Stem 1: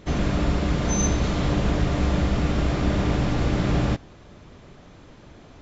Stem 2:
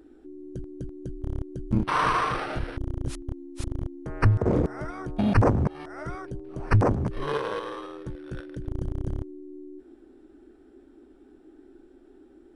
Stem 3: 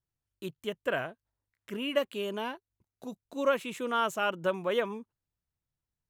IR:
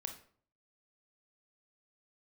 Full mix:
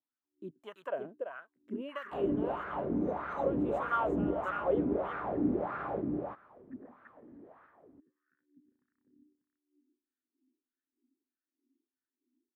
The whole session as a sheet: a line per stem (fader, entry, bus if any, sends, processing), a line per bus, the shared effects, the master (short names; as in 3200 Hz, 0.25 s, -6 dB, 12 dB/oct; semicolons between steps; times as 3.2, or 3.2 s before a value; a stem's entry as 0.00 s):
-5.0 dB, 2.05 s, no send, echo send -3.5 dB, LPF 1800 Hz 12 dB/oct
-8.0 dB, 0.00 s, no send, echo send -10.5 dB, double band-pass 670 Hz, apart 2.9 oct; upward expander 1.5:1, over -53 dBFS
+1.0 dB, 0.00 s, no send, echo send -7 dB, high shelf 8000 Hz +12 dB; compressor 5:1, threshold -30 dBFS, peak gain reduction 9 dB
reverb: off
echo: echo 0.337 s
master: AGC gain up to 6 dB; wah 1.6 Hz 270–1400 Hz, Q 4.1